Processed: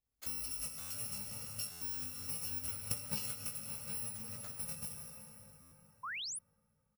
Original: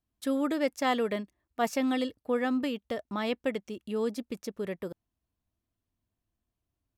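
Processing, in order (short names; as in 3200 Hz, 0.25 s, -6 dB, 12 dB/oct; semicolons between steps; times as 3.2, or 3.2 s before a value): FFT order left unsorted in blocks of 128 samples; doubler 19 ms -4 dB; 4.13–4.57 hard clip -39 dBFS, distortion -22 dB; plate-style reverb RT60 4.5 s, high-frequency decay 0.6×, DRR 4 dB; compressor 6:1, threshold -32 dBFS, peak gain reduction 11 dB; 2.56–3.31 transient shaper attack +12 dB, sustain -1 dB; 6.03–6.39 painted sound rise 960–11000 Hz -35 dBFS; stuck buffer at 0.8/1.71/5.61, samples 512, times 8; gain -6.5 dB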